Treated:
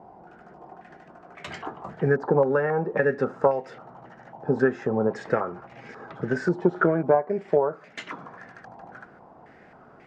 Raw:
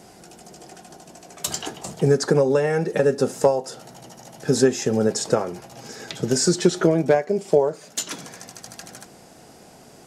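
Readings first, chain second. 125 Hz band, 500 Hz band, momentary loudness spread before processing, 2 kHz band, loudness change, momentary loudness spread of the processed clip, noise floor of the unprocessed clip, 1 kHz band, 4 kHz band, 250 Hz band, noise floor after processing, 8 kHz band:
−5.0 dB, −3.5 dB, 20 LU, +1.5 dB, −3.5 dB, 20 LU, −48 dBFS, +1.0 dB, below −15 dB, −4.5 dB, −51 dBFS, below −25 dB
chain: low-pass on a step sequencer 3.7 Hz 910–2,100 Hz
level −5 dB

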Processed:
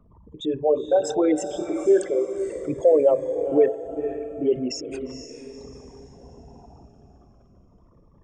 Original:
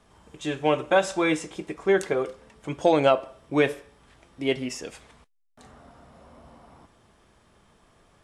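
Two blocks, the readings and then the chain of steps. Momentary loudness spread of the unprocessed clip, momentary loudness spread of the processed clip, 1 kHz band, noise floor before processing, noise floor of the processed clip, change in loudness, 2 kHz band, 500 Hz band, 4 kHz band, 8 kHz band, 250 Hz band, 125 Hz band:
16 LU, 16 LU, −5.0 dB, −61 dBFS, −55 dBFS, +2.5 dB, below −10 dB, +4.5 dB, −4.5 dB, +1.5 dB, +2.5 dB, −5.0 dB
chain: spectral envelope exaggerated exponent 3
feedback delay with all-pass diffusion 475 ms, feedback 40%, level −8.5 dB
phaser whose notches keep moving one way falling 0.38 Hz
level +4.5 dB

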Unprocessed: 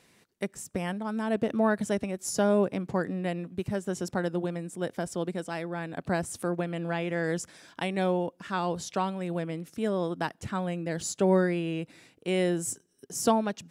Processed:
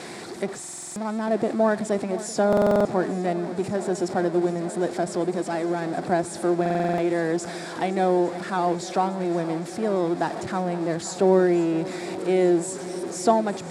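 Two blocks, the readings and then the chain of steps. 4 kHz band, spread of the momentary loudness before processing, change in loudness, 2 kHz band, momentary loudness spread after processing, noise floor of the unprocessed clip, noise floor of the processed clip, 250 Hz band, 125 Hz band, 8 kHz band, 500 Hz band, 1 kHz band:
+2.5 dB, 9 LU, +6.0 dB, +2.5 dB, 9 LU, −66 dBFS, −37 dBFS, +5.5 dB, +2.0 dB, +2.0 dB, +7.0 dB, +7.0 dB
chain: converter with a step at zero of −31.5 dBFS
loudspeaker in its box 140–8,700 Hz, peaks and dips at 350 Hz +8 dB, 730 Hz +9 dB, 2,900 Hz −9 dB, 6,200 Hz −6 dB
feedback echo with a long and a short gap by turns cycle 857 ms, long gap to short 1.5 to 1, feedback 74%, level −17 dB
buffer that repeats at 0:00.59/0:02.48/0:06.61, samples 2,048, times 7

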